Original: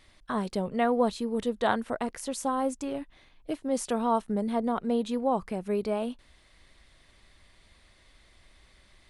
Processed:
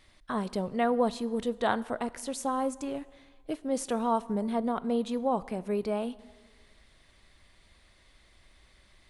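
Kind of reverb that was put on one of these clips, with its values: plate-style reverb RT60 1.6 s, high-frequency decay 0.75×, DRR 17.5 dB; gain -1.5 dB

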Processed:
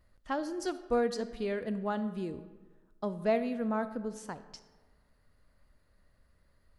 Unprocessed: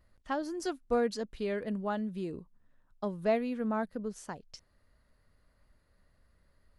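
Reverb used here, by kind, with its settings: digital reverb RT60 1.4 s, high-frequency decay 0.6×, pre-delay 5 ms, DRR 12.5 dB

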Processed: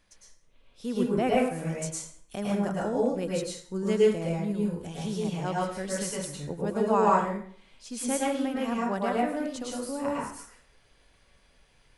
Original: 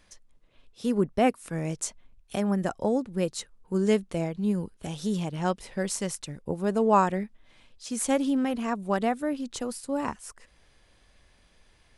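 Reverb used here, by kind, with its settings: plate-style reverb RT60 0.55 s, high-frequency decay 0.8×, pre-delay 95 ms, DRR -5 dB; gain -6 dB

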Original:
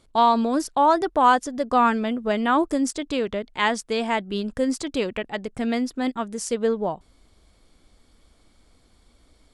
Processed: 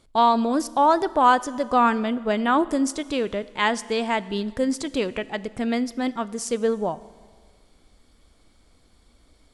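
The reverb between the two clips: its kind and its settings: Schroeder reverb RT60 1.7 s, combs from 26 ms, DRR 17.5 dB

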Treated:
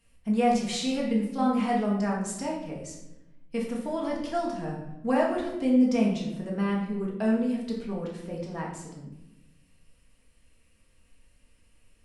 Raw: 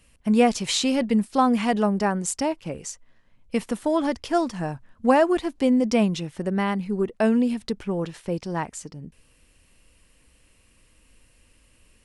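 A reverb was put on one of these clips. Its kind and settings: shoebox room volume 320 m³, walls mixed, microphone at 1.7 m; gain -11.5 dB

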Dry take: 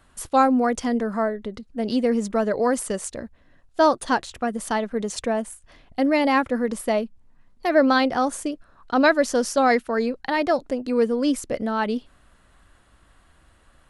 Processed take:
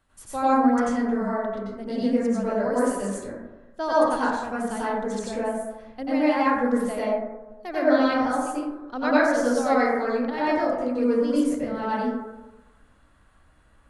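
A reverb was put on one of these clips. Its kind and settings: plate-style reverb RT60 1.1 s, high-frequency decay 0.3×, pre-delay 80 ms, DRR -9.5 dB; gain -12.5 dB

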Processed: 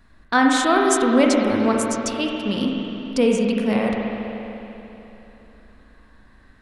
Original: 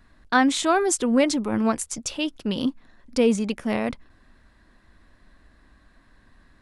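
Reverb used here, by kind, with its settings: spring tank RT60 3.3 s, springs 38/49 ms, chirp 60 ms, DRR -0.5 dB; gain +1 dB

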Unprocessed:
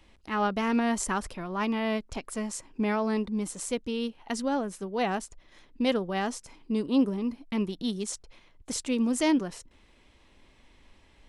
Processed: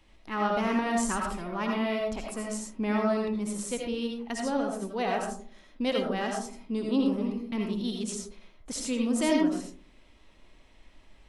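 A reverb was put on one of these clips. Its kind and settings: digital reverb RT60 0.49 s, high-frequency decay 0.35×, pre-delay 40 ms, DRR 0 dB; gain -3 dB

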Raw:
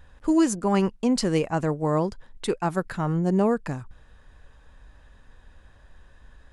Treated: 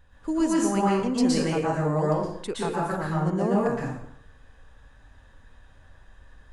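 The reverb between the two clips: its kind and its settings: plate-style reverb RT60 0.71 s, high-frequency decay 0.8×, pre-delay 0.105 s, DRR -6 dB; gain -6.5 dB

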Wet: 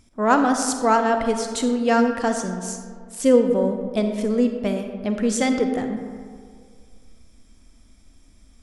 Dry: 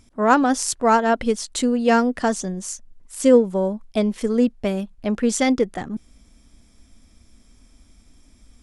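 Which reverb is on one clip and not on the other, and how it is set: digital reverb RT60 2 s, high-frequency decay 0.45×, pre-delay 10 ms, DRR 5.5 dB; gain -2 dB

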